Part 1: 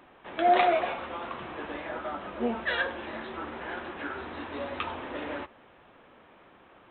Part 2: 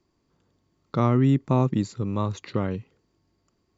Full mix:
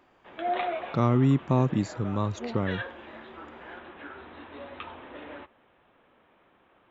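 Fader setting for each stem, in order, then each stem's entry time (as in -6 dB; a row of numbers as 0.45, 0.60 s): -7.0, -2.0 dB; 0.00, 0.00 s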